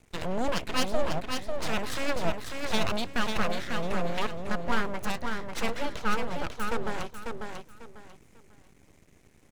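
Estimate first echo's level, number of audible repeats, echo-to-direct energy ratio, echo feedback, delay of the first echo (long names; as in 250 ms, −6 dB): −5.0 dB, 3, −4.5 dB, 26%, 545 ms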